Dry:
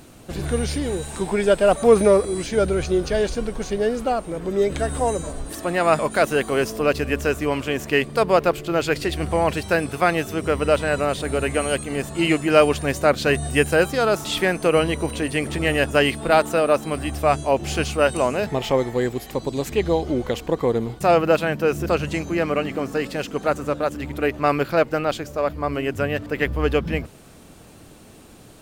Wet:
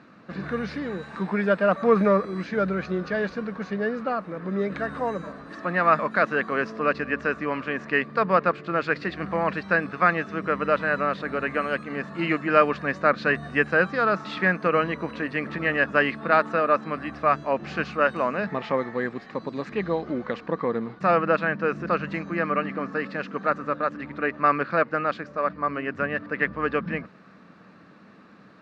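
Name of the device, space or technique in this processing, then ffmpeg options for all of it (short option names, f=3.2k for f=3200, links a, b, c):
kitchen radio: -af "highpass=190,equalizer=f=190:t=q:w=4:g=10,equalizer=f=380:t=q:w=4:g=-5,equalizer=f=760:t=q:w=4:g=-4,equalizer=f=1.2k:t=q:w=4:g=9,equalizer=f=1.7k:t=q:w=4:g=8,equalizer=f=3.2k:t=q:w=4:g=-10,lowpass=f=4k:w=0.5412,lowpass=f=4k:w=1.3066,volume=-4.5dB"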